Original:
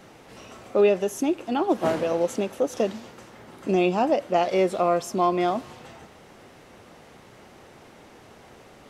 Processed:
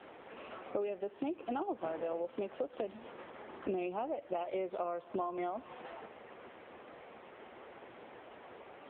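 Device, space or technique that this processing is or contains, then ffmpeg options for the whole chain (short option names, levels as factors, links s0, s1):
voicemail: -af "highpass=310,lowpass=3100,acompressor=threshold=0.02:ratio=10,volume=1.12" -ar 8000 -c:a libopencore_amrnb -b:a 6700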